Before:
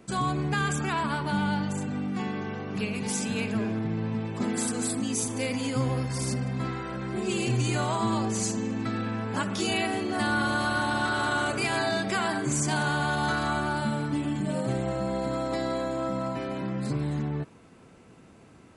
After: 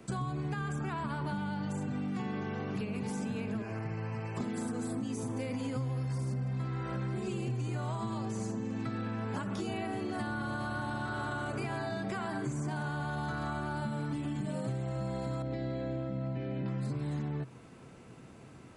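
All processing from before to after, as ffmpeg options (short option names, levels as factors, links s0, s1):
-filter_complex "[0:a]asettb=1/sr,asplit=3[s0][s1][s2];[s0]atrim=end=3.624[s3];[s1]atrim=start=3.62:end=4.37,asetpts=PTS-STARTPTS,afade=t=in:d=0.004:c=qsin,afade=t=out:st=0.746:d=0.004:c=qsin,asuperstop=centerf=3600:order=4:qfactor=2.5,equalizer=f=230:t=o:w=1.4:g=-13[s4];[s2]atrim=start=4.366[s5];[s3][s4]acrossfade=d=0.004:c1=hsin:c2=qsin[s6];[s6][s5]acrossfade=d=0.004:c1=qsin:c2=hsin,asettb=1/sr,asplit=3[s7][s8][s9];[s7]atrim=end=15.424[s10];[s8]atrim=start=15.42:end=16.66,asetpts=PTS-STARTPTS,afade=t=in:d=0.004:c=qsin,afade=t=out:st=1.236:d=0.004:c=qsin,lowpass=2400,equalizer=f=1100:t=o:w=0.99:g=-15[s11];[s9]atrim=start=16.656[s12];[s10][s11]acrossfade=d=0.004:c1=hsin:c2=qsin[s13];[s13][s12]acrossfade=d=0.004:c1=qsin:c2=hsin,acrossover=split=200|1700[s14][s15][s16];[s14]acompressor=threshold=0.0224:ratio=4[s17];[s15]acompressor=threshold=0.0251:ratio=4[s18];[s16]acompressor=threshold=0.00398:ratio=4[s19];[s17][s18][s19]amix=inputs=3:normalize=0,equalizer=f=130:w=7.6:g=8.5,acompressor=threshold=0.0251:ratio=6"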